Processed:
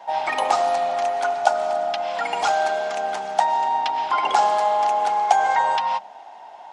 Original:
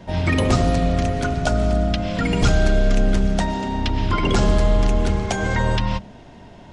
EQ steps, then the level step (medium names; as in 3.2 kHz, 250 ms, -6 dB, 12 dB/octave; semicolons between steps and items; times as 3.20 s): resonant high-pass 810 Hz, resonance Q 9.6; -3.0 dB